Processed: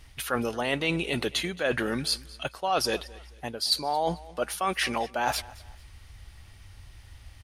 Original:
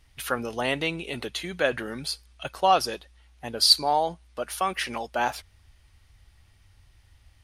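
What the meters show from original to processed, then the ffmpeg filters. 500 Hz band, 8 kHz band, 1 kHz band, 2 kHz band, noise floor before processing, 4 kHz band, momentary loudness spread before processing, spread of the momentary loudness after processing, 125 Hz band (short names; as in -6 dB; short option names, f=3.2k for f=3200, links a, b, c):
-1.0 dB, -1.5 dB, -4.0 dB, 0.0 dB, -59 dBFS, -4.0 dB, 17 LU, 9 LU, +3.5 dB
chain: -af "areverse,acompressor=threshold=-33dB:ratio=6,areverse,aecho=1:1:221|442:0.0891|0.0285,volume=8.5dB"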